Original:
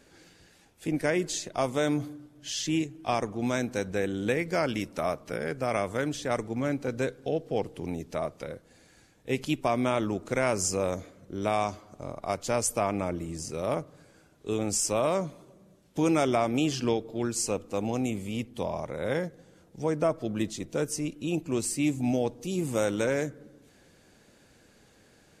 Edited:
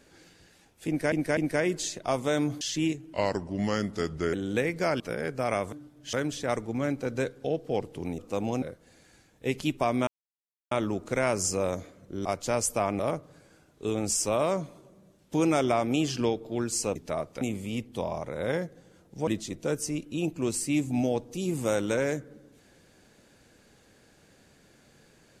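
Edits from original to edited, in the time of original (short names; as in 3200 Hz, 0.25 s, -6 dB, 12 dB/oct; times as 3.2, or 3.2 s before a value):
0.87–1.12 loop, 3 plays
2.11–2.52 move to 5.95
3.04–4.05 speed 84%
4.72–5.23 cut
8–8.46 swap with 17.59–18.03
9.91 insert silence 0.64 s
11.45–12.26 cut
13–13.63 cut
19.89–20.37 cut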